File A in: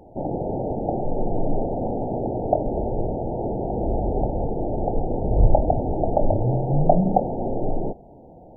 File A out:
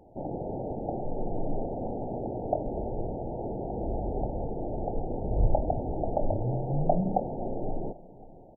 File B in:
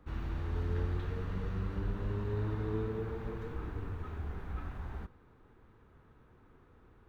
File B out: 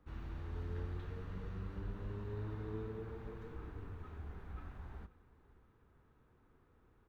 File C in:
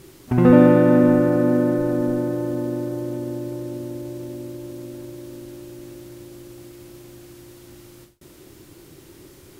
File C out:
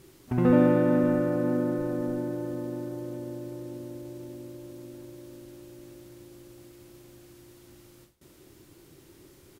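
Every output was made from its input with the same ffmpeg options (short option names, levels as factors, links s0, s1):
-af "aecho=1:1:531|1062|1593:0.1|0.032|0.0102,volume=0.398"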